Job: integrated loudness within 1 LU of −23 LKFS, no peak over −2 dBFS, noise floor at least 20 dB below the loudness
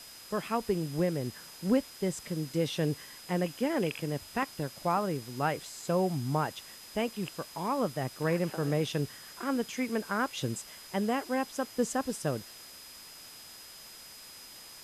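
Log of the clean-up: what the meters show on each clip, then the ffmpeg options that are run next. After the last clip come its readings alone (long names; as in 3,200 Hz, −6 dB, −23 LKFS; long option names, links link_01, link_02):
interfering tone 5,000 Hz; level of the tone −51 dBFS; background noise floor −49 dBFS; target noise floor −53 dBFS; integrated loudness −32.5 LKFS; sample peak −16.0 dBFS; target loudness −23.0 LKFS
→ -af "bandreject=frequency=5000:width=30"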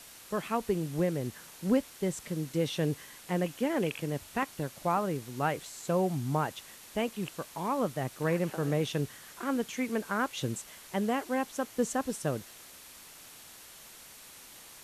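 interfering tone none found; background noise floor −51 dBFS; target noise floor −53 dBFS
→ -af "afftdn=noise_reduction=6:noise_floor=-51"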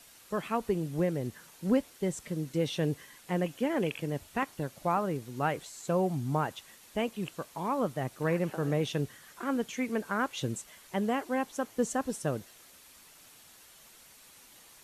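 background noise floor −56 dBFS; integrated loudness −33.0 LKFS; sample peak −16.0 dBFS; target loudness −23.0 LKFS
→ -af "volume=10dB"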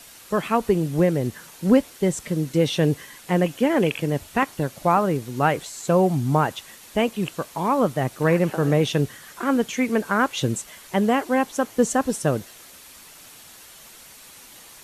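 integrated loudness −23.0 LKFS; sample peak −6.0 dBFS; background noise floor −46 dBFS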